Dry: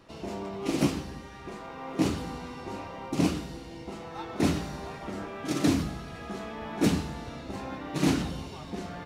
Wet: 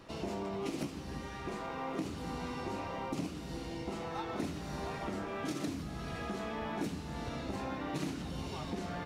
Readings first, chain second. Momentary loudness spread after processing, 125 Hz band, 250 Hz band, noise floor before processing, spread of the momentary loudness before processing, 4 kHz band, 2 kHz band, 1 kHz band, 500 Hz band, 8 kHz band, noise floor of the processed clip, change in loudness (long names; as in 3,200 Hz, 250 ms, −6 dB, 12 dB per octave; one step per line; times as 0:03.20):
3 LU, −8.0 dB, −9.0 dB, −44 dBFS, 14 LU, −7.5 dB, −5.0 dB, −3.0 dB, −5.0 dB, −9.5 dB, −43 dBFS, −7.5 dB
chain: downward compressor 16 to 1, threshold −36 dBFS, peak gain reduction 18 dB
level +2 dB